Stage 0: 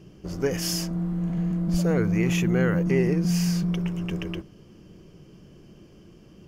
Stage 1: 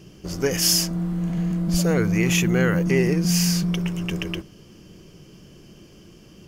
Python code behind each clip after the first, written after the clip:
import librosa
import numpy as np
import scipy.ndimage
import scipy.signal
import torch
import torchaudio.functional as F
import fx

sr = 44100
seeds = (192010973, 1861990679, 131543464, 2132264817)

y = fx.high_shelf(x, sr, hz=2300.0, db=9.5)
y = y * librosa.db_to_amplitude(2.0)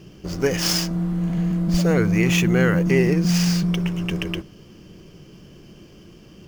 y = scipy.ndimage.median_filter(x, 5, mode='constant')
y = y * librosa.db_to_amplitude(2.0)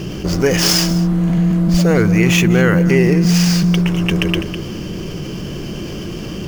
y = x + 10.0 ** (-17.0 / 20.0) * np.pad(x, (int(203 * sr / 1000.0), 0))[:len(x)]
y = fx.env_flatten(y, sr, amount_pct=50)
y = y * librosa.db_to_amplitude(4.0)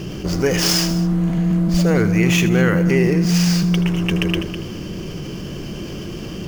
y = x + 10.0 ** (-13.5 / 20.0) * np.pad(x, (int(79 * sr / 1000.0), 0))[:len(x)]
y = y * librosa.db_to_amplitude(-3.5)